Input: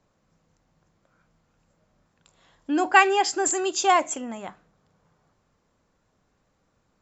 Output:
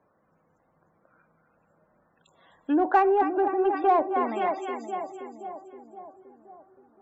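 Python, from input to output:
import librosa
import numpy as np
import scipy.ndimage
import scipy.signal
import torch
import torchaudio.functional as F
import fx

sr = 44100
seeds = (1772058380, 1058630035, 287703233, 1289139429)

p1 = x + fx.echo_split(x, sr, split_hz=750.0, low_ms=522, high_ms=258, feedback_pct=52, wet_db=-8.5, dry=0)
p2 = fx.env_lowpass_down(p1, sr, base_hz=660.0, full_db=-19.5)
p3 = fx.spec_topn(p2, sr, count=64)
p4 = fx.highpass(p3, sr, hz=140.0, slope=6)
p5 = fx.bass_treble(p4, sr, bass_db=-6, treble_db=-11)
p6 = 10.0 ** (-25.5 / 20.0) * np.tanh(p5 / 10.0 ** (-25.5 / 20.0))
p7 = p5 + (p6 * librosa.db_to_amplitude(-9.0))
y = p7 * librosa.db_to_amplitude(2.0)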